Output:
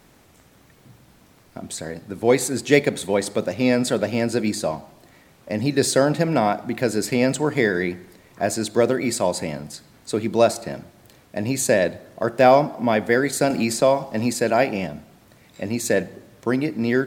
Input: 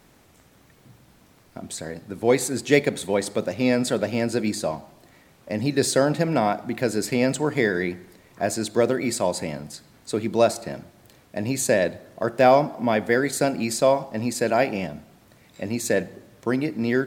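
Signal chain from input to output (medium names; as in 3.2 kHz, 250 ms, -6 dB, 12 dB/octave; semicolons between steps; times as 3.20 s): 13.50–14.36 s: three bands compressed up and down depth 40%; trim +2 dB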